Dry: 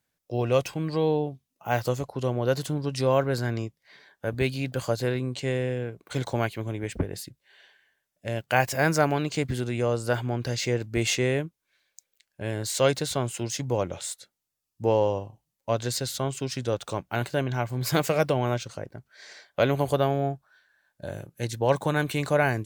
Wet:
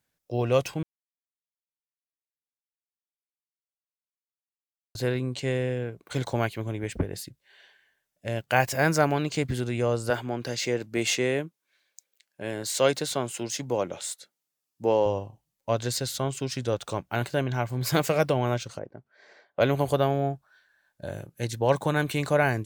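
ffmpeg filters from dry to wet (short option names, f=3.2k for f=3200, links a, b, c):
-filter_complex "[0:a]asettb=1/sr,asplit=3[a][b][c];[a]atrim=end=10.104[d];[b]atrim=start=10.1:end=15.06,asetpts=PTS-STARTPTS,afade=t=in:d=0.004:c=qsin,afade=t=out:st=4.956:d=0.004:c=qsin,highpass=180[e];[c]atrim=start=15.056[f];[d][e]acrossfade=d=0.004:c1=hsin:c2=qsin[g];[g][f]acrossfade=d=0.004:c1=qsin:c2=hsin,asplit=3[h][i][j];[h]afade=t=out:st=18.78:d=0.02[k];[i]bandpass=f=450:t=q:w=0.54,afade=t=in:st=18.78:d=0.02,afade=t=out:st=19.6:d=0.02[l];[j]afade=t=in:st=19.6:d=0.02[m];[k][l][m]amix=inputs=3:normalize=0,asplit=3[n][o][p];[n]atrim=end=0.83,asetpts=PTS-STARTPTS,afade=t=out:st=0.826:d=0.004:c=hsin[q];[o]atrim=start=0.83:end=4.95,asetpts=PTS-STARTPTS,volume=0[r];[p]atrim=start=4.95,asetpts=PTS-STARTPTS,afade=t=in:d=0.004:c=hsin[s];[q][r][s]concat=n=3:v=0:a=1"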